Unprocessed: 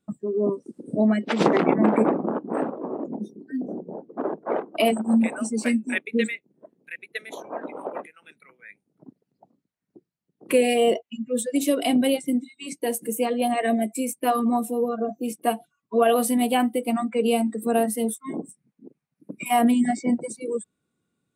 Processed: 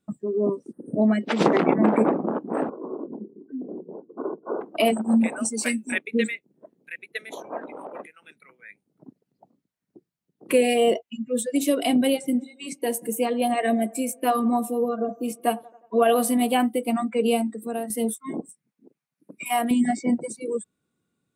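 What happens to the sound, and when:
0:00.72–0:01.02: time-frequency box erased 2,000–8,400 Hz
0:02.69–0:04.61: Chebyshev low-pass with heavy ripple 1,500 Hz, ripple 9 dB
0:05.45–0:05.92: spectral tilt +2.5 dB per octave
0:07.60–0:08.00: downward compressor, threshold −33 dBFS
0:11.98–0:16.61: delay with a band-pass on its return 90 ms, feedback 59%, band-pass 670 Hz, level −20 dB
0:17.33–0:17.90: fade out quadratic, to −9 dB
0:18.40–0:19.71: low-shelf EQ 460 Hz −11.5 dB

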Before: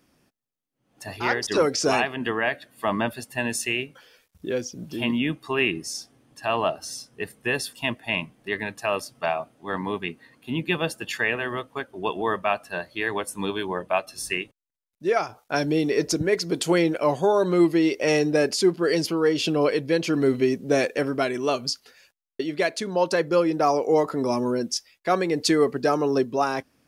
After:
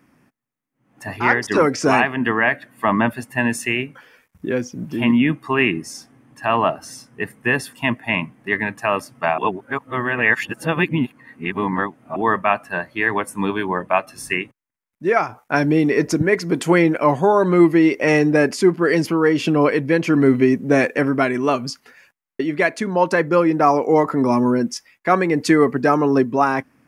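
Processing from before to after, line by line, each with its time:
0:09.38–0:12.16: reverse
whole clip: graphic EQ with 10 bands 125 Hz +7 dB, 250 Hz +8 dB, 1,000 Hz +7 dB, 2,000 Hz +9 dB, 4,000 Hz −7 dB

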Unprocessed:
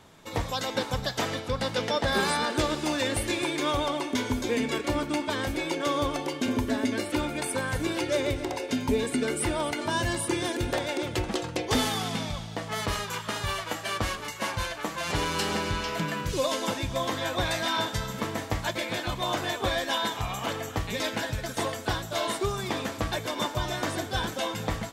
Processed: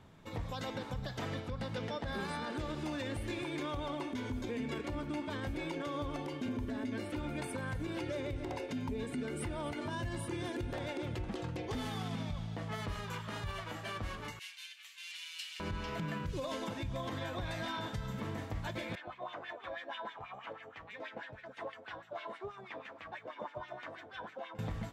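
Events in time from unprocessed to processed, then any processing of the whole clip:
0:14.39–0:15.60: Chebyshev high-pass filter 2,600 Hz, order 3
0:18.95–0:24.59: auto-filter band-pass sine 6.2 Hz 540–2,500 Hz
whole clip: bass and treble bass +8 dB, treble −8 dB; downward compressor 3 to 1, threshold −25 dBFS; brickwall limiter −22 dBFS; level −7.5 dB

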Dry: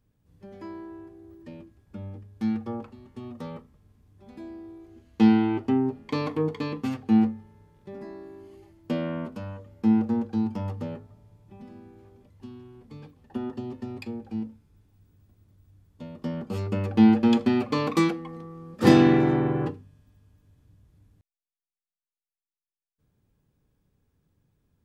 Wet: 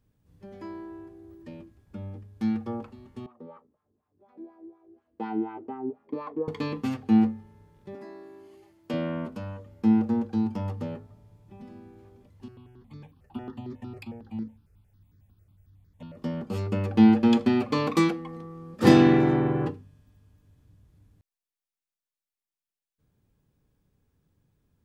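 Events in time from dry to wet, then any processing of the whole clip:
0:03.26–0:06.48: LFO wah 4.1 Hz 320–1,200 Hz, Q 2.7
0:07.95–0:08.94: high-pass filter 380 Hz 6 dB per octave
0:12.48–0:16.17: step-sequenced phaser 11 Hz 950–2,800 Hz

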